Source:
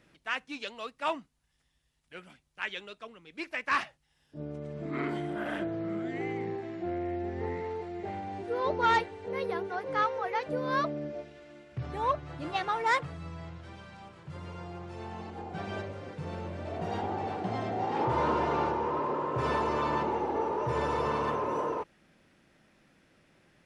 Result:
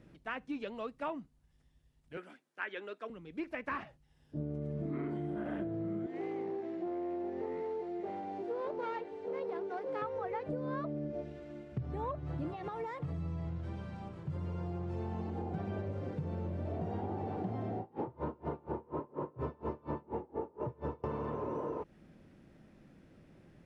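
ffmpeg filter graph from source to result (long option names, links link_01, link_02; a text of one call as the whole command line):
ffmpeg -i in.wav -filter_complex "[0:a]asettb=1/sr,asplit=3[link_01][link_02][link_03];[link_01]atrim=end=2.174[link_04];[link_02]atrim=start=2.17:end=3.1,asetpts=PTS-STARTPTS,afade=type=in:duration=0.004:curve=qsin,afade=type=out:start_time=0.926:duration=0.004:curve=qsin,highpass=frequency=270:width=0.5412,highpass=frequency=270:width=1.3066,equalizer=frequency=1600:width=2.2:gain=7.5[link_05];[link_03]atrim=start=3.096[link_06];[link_04][link_05]acrossfade=duration=0.004:curve1=hsin:curve2=qsin[link_07];[link_07][link_06]acrossfade=duration=0.004:curve1=qsin:curve2=hsin,asettb=1/sr,asplit=3[link_08][link_09][link_10];[link_08]atrim=end=6.064[link_11];[link_09]atrim=start=6.06:end=10.02,asetpts=PTS-STARTPTS,afade=type=in:duration=0.004:curve=qsin,afade=type=out:start_time=3.956:duration=0.004:curve=qsin,aeval=exprs='clip(val(0),-1,0.0211)':channel_layout=same,highpass=390,lowpass=6800,equalizer=frequency=1600:width_type=o:width=2.6:gain=-3.5[link_12];[link_10]atrim=start=10.016[link_13];[link_11][link_12]acrossfade=duration=0.004:curve1=hsin:curve2=qsin[link_14];[link_14][link_13]acrossfade=duration=0.004:curve1=qsin:curve2=hsin,asettb=1/sr,asplit=3[link_15][link_16][link_17];[link_15]atrim=end=12.514[link_18];[link_16]atrim=start=12.51:end=13.47,asetpts=PTS-STARTPTS,afade=type=in:duration=0.004:curve=qsin,afade=type=out:start_time=0.956:duration=0.004:curve=qsin,highpass=51,bandreject=frequency=1500:width=9.1,acompressor=threshold=-36dB:ratio=12:attack=3.2:release=140:knee=1:detection=peak[link_19];[link_17]atrim=start=13.466[link_20];[link_18][link_19]acrossfade=duration=0.004:curve1=hsin:curve2=qsin[link_21];[link_21][link_20]acrossfade=duration=0.004:curve1=qsin:curve2=hsin,asettb=1/sr,asplit=3[link_22][link_23][link_24];[link_22]atrim=end=17.794[link_25];[link_23]atrim=start=17.79:end=21.04,asetpts=PTS-STARTPTS,afade=type=in:duration=0.004:curve=qsin,afade=type=out:start_time=3.246:duration=0.004:curve=qsin,lowpass=frequency=2000:poles=1,aeval=exprs='val(0)*pow(10,-33*(0.5-0.5*cos(2*PI*4.2*n/s))/20)':channel_layout=same[link_26];[link_24]atrim=start=21.036[link_27];[link_25][link_26]acrossfade=duration=0.004:curve1=hsin:curve2=qsin[link_28];[link_28][link_27]acrossfade=duration=0.004:curve1=qsin:curve2=hsin,acrossover=split=3100[link_29][link_30];[link_30]acompressor=threshold=-58dB:ratio=4:attack=1:release=60[link_31];[link_29][link_31]amix=inputs=2:normalize=0,tiltshelf=frequency=680:gain=8,acompressor=threshold=-35dB:ratio=10,volume=1dB" out.wav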